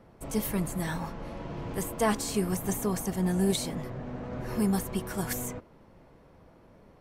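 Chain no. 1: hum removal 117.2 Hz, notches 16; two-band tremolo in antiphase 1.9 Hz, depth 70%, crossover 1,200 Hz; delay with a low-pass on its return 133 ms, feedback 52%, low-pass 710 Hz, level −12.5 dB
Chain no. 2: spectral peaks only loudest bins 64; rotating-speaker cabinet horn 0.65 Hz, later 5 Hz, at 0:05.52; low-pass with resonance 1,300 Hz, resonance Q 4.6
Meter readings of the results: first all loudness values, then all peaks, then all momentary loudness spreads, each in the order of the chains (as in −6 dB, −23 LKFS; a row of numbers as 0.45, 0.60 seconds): −34.0, −33.0 LKFS; −16.5, −16.0 dBFS; 11, 10 LU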